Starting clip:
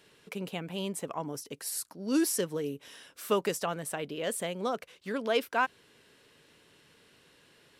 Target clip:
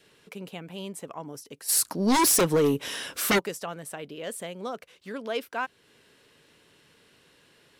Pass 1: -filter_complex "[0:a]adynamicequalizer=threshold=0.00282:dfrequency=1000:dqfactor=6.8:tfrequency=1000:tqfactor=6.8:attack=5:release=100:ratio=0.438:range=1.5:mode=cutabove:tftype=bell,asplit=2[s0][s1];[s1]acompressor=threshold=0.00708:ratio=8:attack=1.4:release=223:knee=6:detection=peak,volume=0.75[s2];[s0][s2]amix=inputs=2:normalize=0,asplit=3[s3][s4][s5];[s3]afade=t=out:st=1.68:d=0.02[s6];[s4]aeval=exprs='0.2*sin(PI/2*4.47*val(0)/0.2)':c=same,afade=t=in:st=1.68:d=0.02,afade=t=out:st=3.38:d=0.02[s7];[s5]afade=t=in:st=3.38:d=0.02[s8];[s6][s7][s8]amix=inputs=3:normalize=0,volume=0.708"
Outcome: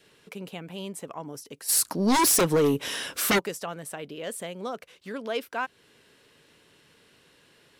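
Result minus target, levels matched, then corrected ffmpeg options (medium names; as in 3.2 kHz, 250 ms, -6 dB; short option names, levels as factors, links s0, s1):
compression: peak gain reduction -9 dB
-filter_complex "[0:a]adynamicequalizer=threshold=0.00282:dfrequency=1000:dqfactor=6.8:tfrequency=1000:tqfactor=6.8:attack=5:release=100:ratio=0.438:range=1.5:mode=cutabove:tftype=bell,asplit=2[s0][s1];[s1]acompressor=threshold=0.00211:ratio=8:attack=1.4:release=223:knee=6:detection=peak,volume=0.75[s2];[s0][s2]amix=inputs=2:normalize=0,asplit=3[s3][s4][s5];[s3]afade=t=out:st=1.68:d=0.02[s6];[s4]aeval=exprs='0.2*sin(PI/2*4.47*val(0)/0.2)':c=same,afade=t=in:st=1.68:d=0.02,afade=t=out:st=3.38:d=0.02[s7];[s5]afade=t=in:st=3.38:d=0.02[s8];[s6][s7][s8]amix=inputs=3:normalize=0,volume=0.708"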